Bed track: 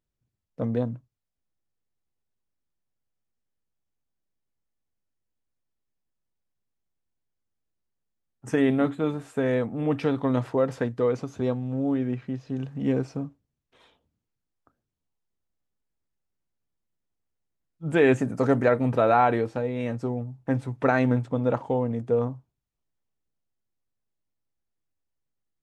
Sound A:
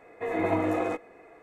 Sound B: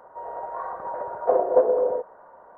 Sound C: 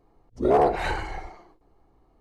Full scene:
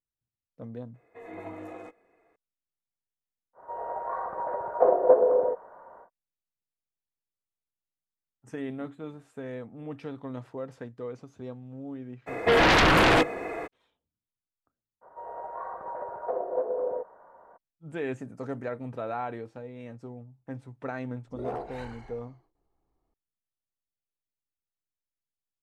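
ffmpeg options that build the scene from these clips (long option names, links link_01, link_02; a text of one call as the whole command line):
ffmpeg -i bed.wav -i cue0.wav -i cue1.wav -i cue2.wav -filter_complex "[1:a]asplit=2[link_01][link_02];[2:a]asplit=2[link_03][link_04];[0:a]volume=-13.5dB[link_05];[link_02]aeval=exprs='0.211*sin(PI/2*6.31*val(0)/0.211)':channel_layout=same[link_06];[link_04]alimiter=limit=-14dB:level=0:latency=1:release=453[link_07];[link_01]atrim=end=1.42,asetpts=PTS-STARTPTS,volume=-14.5dB,afade=type=in:duration=0.004:curve=hsin,afade=type=out:start_time=1.416:duration=0.004:curve=hsin,adelay=940[link_08];[link_03]atrim=end=2.57,asetpts=PTS-STARTPTS,volume=-0.5dB,afade=type=in:duration=0.1,afade=type=out:start_time=2.47:duration=0.1,adelay=155673S[link_09];[link_06]atrim=end=1.42,asetpts=PTS-STARTPTS,volume=-2.5dB,afade=type=in:duration=0.02,afade=type=out:start_time=1.4:duration=0.02,adelay=12260[link_10];[link_07]atrim=end=2.57,asetpts=PTS-STARTPTS,volume=-5dB,afade=type=in:duration=0.02,afade=type=out:start_time=2.55:duration=0.02,adelay=15010[link_11];[3:a]atrim=end=2.2,asetpts=PTS-STARTPTS,volume=-16dB,afade=type=in:duration=0.004:curve=hsin,afade=type=out:start_time=2.196:duration=0.004:curve=hsin,adelay=20940[link_12];[link_05][link_08][link_09][link_10][link_11][link_12]amix=inputs=6:normalize=0" out.wav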